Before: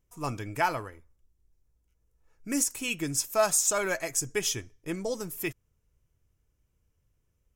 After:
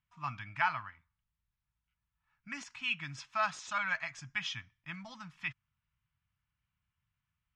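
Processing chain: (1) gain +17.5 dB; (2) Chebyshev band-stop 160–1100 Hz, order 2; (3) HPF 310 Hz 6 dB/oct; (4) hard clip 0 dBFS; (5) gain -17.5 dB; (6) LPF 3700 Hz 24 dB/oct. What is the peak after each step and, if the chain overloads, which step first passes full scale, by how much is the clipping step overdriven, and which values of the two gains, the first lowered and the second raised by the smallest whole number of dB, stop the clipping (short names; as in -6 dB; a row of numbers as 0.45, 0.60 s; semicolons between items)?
+5.5, +4.0, +4.0, 0.0, -17.5, -16.5 dBFS; step 1, 4.0 dB; step 1 +13.5 dB, step 5 -13.5 dB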